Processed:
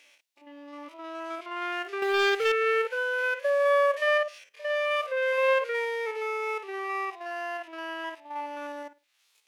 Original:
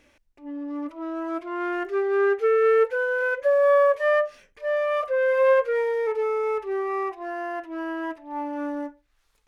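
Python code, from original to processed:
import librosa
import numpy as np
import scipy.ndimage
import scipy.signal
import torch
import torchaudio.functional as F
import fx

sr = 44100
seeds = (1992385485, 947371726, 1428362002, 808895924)

y = fx.spec_steps(x, sr, hold_ms=50)
y = scipy.signal.sosfilt(scipy.signal.butter(2, 670.0, 'highpass', fs=sr, output='sos'), y)
y = fx.leveller(y, sr, passes=2, at=(2.02, 2.52))
y = fx.high_shelf_res(y, sr, hz=2000.0, db=7.0, q=1.5)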